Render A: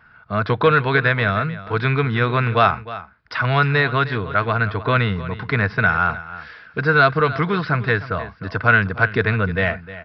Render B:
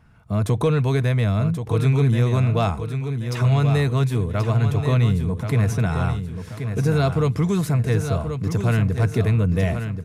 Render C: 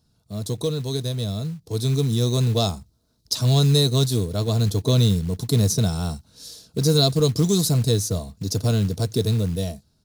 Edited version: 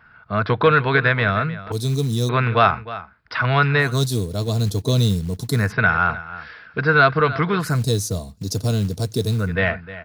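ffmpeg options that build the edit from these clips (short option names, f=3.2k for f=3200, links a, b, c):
-filter_complex "[2:a]asplit=3[a][b][c];[0:a]asplit=4[d][e][f][g];[d]atrim=end=1.722[h];[a]atrim=start=1.718:end=2.292[i];[e]atrim=start=2.288:end=4.02[j];[b]atrim=start=3.78:end=5.73[k];[f]atrim=start=5.49:end=7.83[l];[c]atrim=start=7.59:end=9.58[m];[g]atrim=start=9.34[n];[h][i]acrossfade=d=0.004:c1=hsin:c2=hsin[o];[o][j]acrossfade=d=0.004:c1=hsin:c2=hsin[p];[p][k]acrossfade=d=0.24:c1=tri:c2=tri[q];[q][l]acrossfade=d=0.24:c1=tri:c2=tri[r];[r][m]acrossfade=d=0.24:c1=tri:c2=tri[s];[s][n]acrossfade=d=0.24:c1=tri:c2=tri"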